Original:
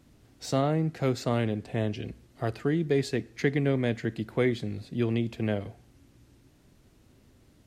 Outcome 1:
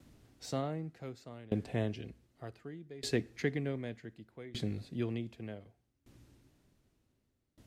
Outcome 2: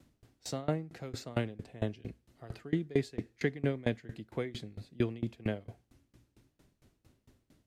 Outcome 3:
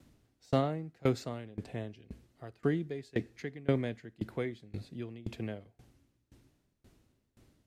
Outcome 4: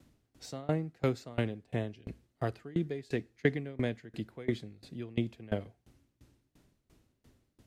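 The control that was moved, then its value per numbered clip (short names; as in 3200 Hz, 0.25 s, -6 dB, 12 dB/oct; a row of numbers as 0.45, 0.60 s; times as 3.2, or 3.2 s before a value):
dB-ramp tremolo, rate: 0.66, 4.4, 1.9, 2.9 Hz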